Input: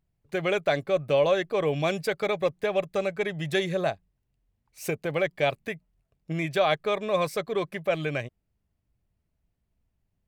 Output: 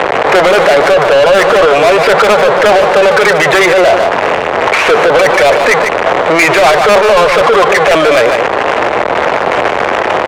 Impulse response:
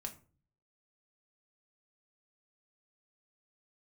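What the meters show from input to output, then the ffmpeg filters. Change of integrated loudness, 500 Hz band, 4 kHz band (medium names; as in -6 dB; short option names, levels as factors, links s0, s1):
+19.5 dB, +20.0 dB, +20.5 dB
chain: -filter_complex "[0:a]aeval=exprs='val(0)+0.5*0.0188*sgn(val(0))':c=same,highpass=48,equalizer=f=470:t=o:w=1.1:g=7,asplit=2[s0][s1];[s1]highpass=f=720:p=1,volume=25.1,asoftclip=type=tanh:threshold=0.473[s2];[s0][s2]amix=inputs=2:normalize=0,lowpass=f=2800:p=1,volume=0.501,acrossover=split=150|2900[s3][s4][s5];[s3]acompressor=threshold=0.00891:ratio=6[s6];[s6][s4][s5]amix=inputs=3:normalize=0,acrossover=split=550 2900:gain=0.141 1 0.1[s7][s8][s9];[s7][s8][s9]amix=inputs=3:normalize=0,asoftclip=type=tanh:threshold=0.0794,adynamicsmooth=sensitivity=4:basefreq=2300,aecho=1:1:148:0.376,alimiter=level_in=23.7:limit=0.891:release=50:level=0:latency=1,volume=0.891"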